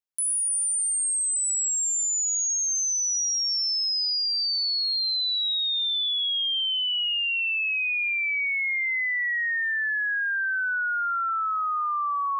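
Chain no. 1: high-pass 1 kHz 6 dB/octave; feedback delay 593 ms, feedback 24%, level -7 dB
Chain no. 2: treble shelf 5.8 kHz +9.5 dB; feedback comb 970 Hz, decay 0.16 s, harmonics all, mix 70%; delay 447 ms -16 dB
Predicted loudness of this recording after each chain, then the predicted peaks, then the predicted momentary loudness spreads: -23.0 LUFS, -28.5 LUFS; -18.5 dBFS, -17.5 dBFS; 4 LU, 10 LU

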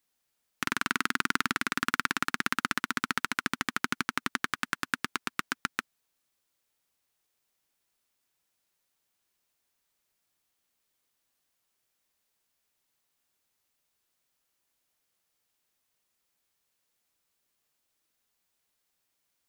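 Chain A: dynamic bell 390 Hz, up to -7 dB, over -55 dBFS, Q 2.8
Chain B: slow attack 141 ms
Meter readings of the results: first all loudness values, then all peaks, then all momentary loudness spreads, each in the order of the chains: -31.5 LUFS, -39.0 LUFS; -5.5 dBFS, -9.5 dBFS; 5 LU, 4 LU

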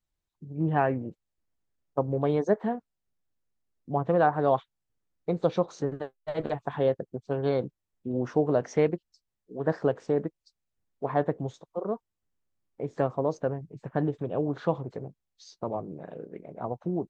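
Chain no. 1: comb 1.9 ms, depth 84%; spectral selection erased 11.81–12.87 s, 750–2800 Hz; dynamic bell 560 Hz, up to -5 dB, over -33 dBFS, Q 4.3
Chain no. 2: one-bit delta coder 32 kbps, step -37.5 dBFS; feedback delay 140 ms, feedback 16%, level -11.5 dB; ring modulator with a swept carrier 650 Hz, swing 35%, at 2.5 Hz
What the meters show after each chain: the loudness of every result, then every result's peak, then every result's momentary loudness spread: -28.5 LUFS, -32.5 LUFS; -10.0 dBFS, -12.0 dBFS; 14 LU, 16 LU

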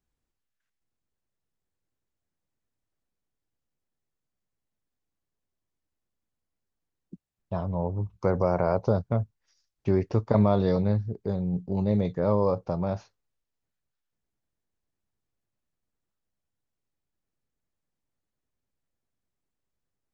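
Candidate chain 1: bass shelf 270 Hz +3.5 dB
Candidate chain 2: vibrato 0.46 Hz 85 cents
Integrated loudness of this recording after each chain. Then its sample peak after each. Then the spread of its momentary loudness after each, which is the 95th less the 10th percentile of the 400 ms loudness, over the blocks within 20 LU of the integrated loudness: -25.0 LUFS, -27.0 LUFS; -6.5 dBFS, -8.0 dBFS; 9 LU, 9 LU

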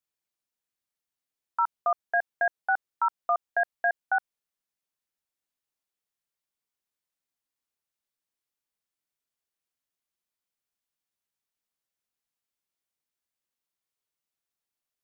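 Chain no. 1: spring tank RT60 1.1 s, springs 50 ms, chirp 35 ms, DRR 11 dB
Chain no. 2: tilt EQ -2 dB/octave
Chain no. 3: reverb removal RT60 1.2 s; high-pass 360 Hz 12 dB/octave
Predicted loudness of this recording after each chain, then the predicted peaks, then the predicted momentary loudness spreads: -28.5 LUFS, -29.0 LUFS, -29.0 LUFS; -16.0 dBFS, -16.5 dBFS, -16.5 dBFS; 3 LU, 3 LU, 3 LU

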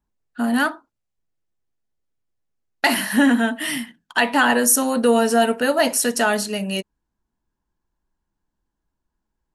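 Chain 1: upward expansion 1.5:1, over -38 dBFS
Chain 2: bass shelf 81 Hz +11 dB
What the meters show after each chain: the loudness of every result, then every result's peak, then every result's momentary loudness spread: -20.5 LUFS, -19.0 LUFS; -4.5 dBFS, -3.5 dBFS; 14 LU, 9 LU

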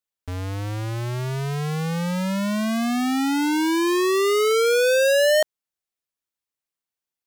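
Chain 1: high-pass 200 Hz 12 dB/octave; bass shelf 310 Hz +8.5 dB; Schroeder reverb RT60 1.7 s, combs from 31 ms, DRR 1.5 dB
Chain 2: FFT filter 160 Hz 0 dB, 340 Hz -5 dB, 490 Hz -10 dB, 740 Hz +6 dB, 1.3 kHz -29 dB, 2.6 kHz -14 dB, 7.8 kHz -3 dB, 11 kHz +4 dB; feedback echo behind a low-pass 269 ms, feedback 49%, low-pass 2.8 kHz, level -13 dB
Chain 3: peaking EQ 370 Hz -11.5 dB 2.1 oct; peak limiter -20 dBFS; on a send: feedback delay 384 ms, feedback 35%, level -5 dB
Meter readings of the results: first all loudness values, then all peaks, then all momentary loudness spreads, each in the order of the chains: -17.0 LUFS, -26.0 LUFS, -28.5 LUFS; -4.0 dBFS, -14.0 dBFS, -15.5 dBFS; 15 LU, 11 LU, 8 LU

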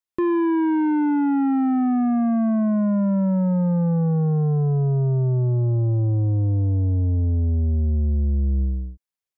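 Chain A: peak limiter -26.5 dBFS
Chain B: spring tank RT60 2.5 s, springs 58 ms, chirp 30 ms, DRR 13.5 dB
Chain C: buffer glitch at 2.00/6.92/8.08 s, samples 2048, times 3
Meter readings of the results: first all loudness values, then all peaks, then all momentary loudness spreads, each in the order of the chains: -29.0 LUFS, -20.5 LUFS, -21.0 LUFS; -26.5 dBFS, -15.0 dBFS, -18.5 dBFS; 2 LU, 2 LU, 2 LU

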